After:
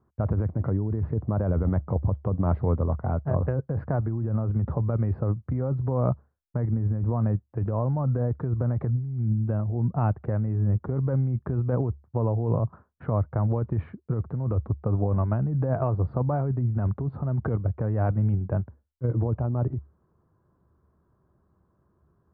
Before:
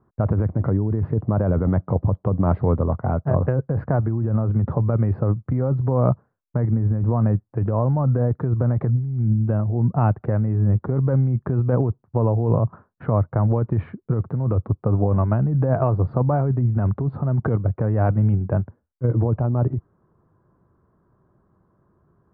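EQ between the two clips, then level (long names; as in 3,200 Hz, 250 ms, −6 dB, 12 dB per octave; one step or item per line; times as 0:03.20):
parametric band 71 Hz +12 dB 0.29 octaves
−6.0 dB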